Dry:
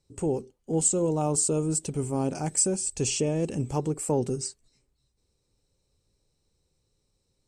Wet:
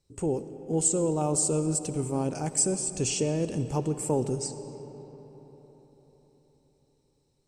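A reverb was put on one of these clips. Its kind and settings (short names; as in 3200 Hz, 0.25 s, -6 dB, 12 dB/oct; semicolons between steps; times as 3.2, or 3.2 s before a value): digital reverb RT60 4.7 s, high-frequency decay 0.55×, pre-delay 30 ms, DRR 10.5 dB; gain -1 dB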